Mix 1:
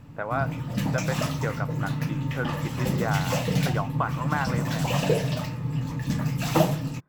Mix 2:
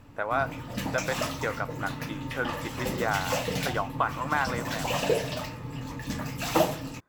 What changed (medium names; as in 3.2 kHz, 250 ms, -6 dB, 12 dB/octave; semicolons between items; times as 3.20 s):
speech: remove distance through air 280 m; master: add peaking EQ 150 Hz -12.5 dB 0.94 oct